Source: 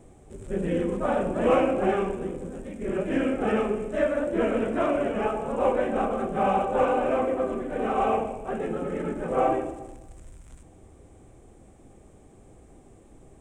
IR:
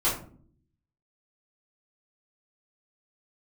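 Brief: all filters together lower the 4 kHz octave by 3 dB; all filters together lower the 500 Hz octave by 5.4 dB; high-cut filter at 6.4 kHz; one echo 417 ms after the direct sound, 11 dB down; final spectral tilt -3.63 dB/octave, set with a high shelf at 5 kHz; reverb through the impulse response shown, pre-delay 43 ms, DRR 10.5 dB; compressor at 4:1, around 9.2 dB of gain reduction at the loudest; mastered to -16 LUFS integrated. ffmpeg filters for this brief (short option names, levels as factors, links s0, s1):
-filter_complex "[0:a]lowpass=6400,equalizer=f=500:t=o:g=-6.5,equalizer=f=4000:t=o:g=-6,highshelf=f=5000:g=3.5,acompressor=threshold=0.0224:ratio=4,aecho=1:1:417:0.282,asplit=2[s0][s1];[1:a]atrim=start_sample=2205,adelay=43[s2];[s1][s2]afir=irnorm=-1:irlink=0,volume=0.0794[s3];[s0][s3]amix=inputs=2:normalize=0,volume=10"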